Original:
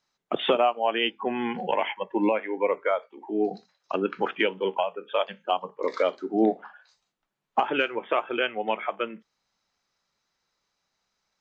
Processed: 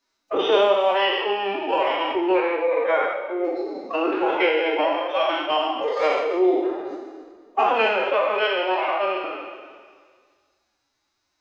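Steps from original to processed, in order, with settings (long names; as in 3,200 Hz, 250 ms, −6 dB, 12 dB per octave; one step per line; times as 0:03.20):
peak hold with a decay on every bin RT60 1.82 s
phase-vocoder pitch shift with formants kept +9 semitones
coupled-rooms reverb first 0.73 s, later 2.2 s, from −27 dB, DRR 5.5 dB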